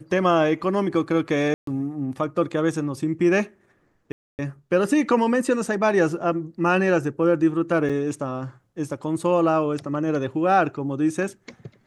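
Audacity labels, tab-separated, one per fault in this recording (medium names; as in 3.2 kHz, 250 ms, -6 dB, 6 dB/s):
1.540000	1.670000	dropout 133 ms
4.120000	4.390000	dropout 269 ms
7.890000	7.900000	dropout 5.5 ms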